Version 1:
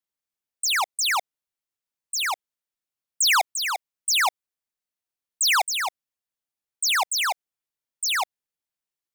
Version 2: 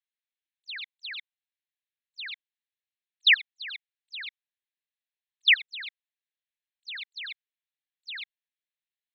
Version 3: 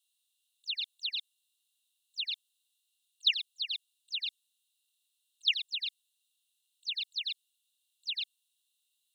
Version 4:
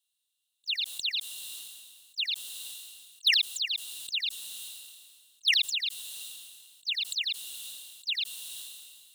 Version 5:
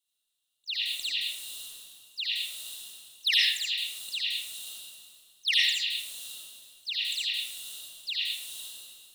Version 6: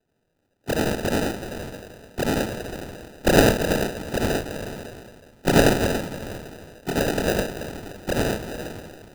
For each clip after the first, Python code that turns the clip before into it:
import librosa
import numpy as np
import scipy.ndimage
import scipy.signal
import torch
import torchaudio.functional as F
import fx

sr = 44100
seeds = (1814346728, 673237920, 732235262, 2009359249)

y1 = scipy.signal.sosfilt(scipy.signal.cheby1(5, 1.0, [1600.0, 4200.0], 'bandpass', fs=sr, output='sos'), x)
y1 = fx.level_steps(y1, sr, step_db=21)
y1 = F.gain(torch.from_numpy(y1), 5.0).numpy()
y2 = scipy.signal.sosfilt(scipy.signal.cheby1(6, 9, 2700.0, 'highpass', fs=sr, output='sos'), y1)
y2 = fx.spectral_comp(y2, sr, ratio=2.0)
y2 = F.gain(torch.from_numpy(y2), -2.5).numpy()
y3 = fx.leveller(y2, sr, passes=1)
y3 = fx.sustainer(y3, sr, db_per_s=31.0)
y4 = fx.rev_freeverb(y3, sr, rt60_s=1.1, hf_ratio=0.35, predelay_ms=35, drr_db=-4.5)
y4 = F.gain(torch.from_numpy(y4), -3.5).numpy()
y5 = fx.sample_hold(y4, sr, seeds[0], rate_hz=1100.0, jitter_pct=0)
y5 = F.gain(torch.from_numpy(y5), 8.5).numpy()